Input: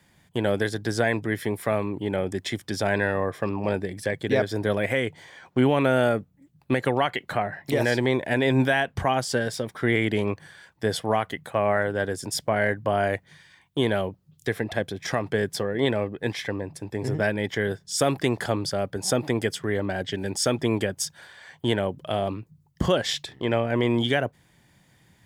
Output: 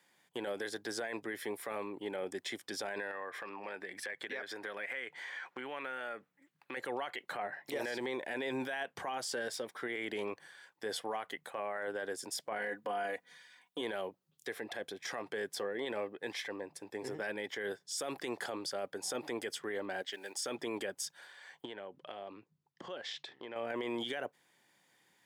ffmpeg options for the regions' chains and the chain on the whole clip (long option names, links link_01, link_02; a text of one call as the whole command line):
ffmpeg -i in.wav -filter_complex "[0:a]asettb=1/sr,asplit=3[link_01][link_02][link_03];[link_01]atrim=end=3.114[link_04];[link_02]atrim=start=3.11:end=6.77,asetpts=PTS-STARTPTS,afade=type=in:duration=0.004:curve=qsin,afade=type=out:start_time=3.656:duration=0.004:curve=qsin,highpass=98,equalizer=frequency=1800:width_type=o:width=1.8:gain=12,acompressor=threshold=-31dB:ratio=4:attack=3.2:release=140:knee=1:detection=peak[link_05];[link_03]atrim=start=6.766[link_06];[link_04][link_05]acrossfade=duration=0.004:curve1=hsin:curve2=qsin[link_07];[link_07][link_06]acrossfade=duration=0.004:curve1=qsin:curve2=hsin,asettb=1/sr,asplit=3[link_08][link_09][link_10];[link_08]atrim=end=12.584[link_11];[link_09]atrim=start=12.58:end=13.81,asetpts=PTS-STARTPTS,afade=type=in:duration=0.004:curve=qsin,afade=type=out:start_time=1.226:duration=0.004:curve=qsin,aecho=1:1:4.1:0.87,atrim=end_sample=54243,deesser=0.65[link_12];[link_10]atrim=start=13.806[link_13];[link_11][link_12]acrossfade=duration=0.004:curve1=hsin:curve2=qsin[link_14];[link_14][link_13]acrossfade=duration=0.004:curve1=qsin:curve2=hsin,asettb=1/sr,asplit=3[link_15][link_16][link_17];[link_15]atrim=end=20.024[link_18];[link_16]atrim=start=20.02:end=20.42,asetpts=PTS-STARTPTS,afade=type=in:duration=0.004:curve=qsin,afade=type=out:start_time=0.396:duration=0.004:curve=qsin,highpass=frequency=770:poles=1,acrusher=bits=7:mode=log:mix=0:aa=0.000001[link_19];[link_17]atrim=start=20.416[link_20];[link_18][link_19]acrossfade=duration=0.004:curve1=hsin:curve2=qsin[link_21];[link_21][link_20]acrossfade=duration=0.004:curve1=qsin:curve2=hsin,asettb=1/sr,asplit=3[link_22][link_23][link_24];[link_22]atrim=end=21.654[link_25];[link_23]atrim=start=21.65:end=23.56,asetpts=PTS-STARTPTS,afade=type=in:duration=0.004:curve=qsin,afade=type=out:start_time=1.906:duration=0.004:curve=qsin,lowpass=4400,acompressor=threshold=-32dB:ratio=4:attack=3.2:release=140:knee=1:detection=peak[link_26];[link_24]atrim=start=23.556[link_27];[link_25][link_26]acrossfade=duration=0.004:curve1=hsin:curve2=qsin[link_28];[link_28][link_27]acrossfade=duration=0.004:curve1=qsin:curve2=hsin,highpass=390,bandreject=frequency=640:width=12,alimiter=limit=-21.5dB:level=0:latency=1:release=30,volume=-7dB" out.wav